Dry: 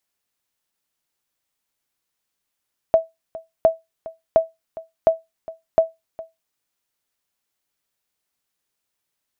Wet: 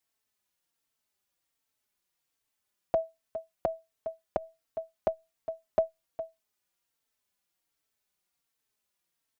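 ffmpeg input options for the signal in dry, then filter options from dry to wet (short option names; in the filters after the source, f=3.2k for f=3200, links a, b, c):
-f lavfi -i "aevalsrc='0.531*(sin(2*PI*652*mod(t,0.71))*exp(-6.91*mod(t,0.71)/0.19)+0.112*sin(2*PI*652*max(mod(t,0.71)-0.41,0))*exp(-6.91*max(mod(t,0.71)-0.41,0)/0.19))':d=3.55:s=44100"
-filter_complex "[0:a]alimiter=limit=-10dB:level=0:latency=1:release=61,asplit=2[a][b];[b]adelay=3.9,afreqshift=-1.3[c];[a][c]amix=inputs=2:normalize=1"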